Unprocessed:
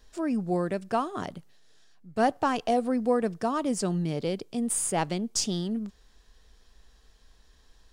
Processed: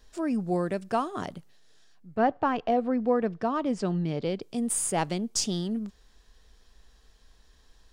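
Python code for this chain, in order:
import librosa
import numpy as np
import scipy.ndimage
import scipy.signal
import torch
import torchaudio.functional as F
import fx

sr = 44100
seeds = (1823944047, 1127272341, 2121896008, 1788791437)

y = fx.lowpass(x, sr, hz=fx.line((2.15, 2200.0), (4.41, 4600.0)), slope=12, at=(2.15, 4.41), fade=0.02)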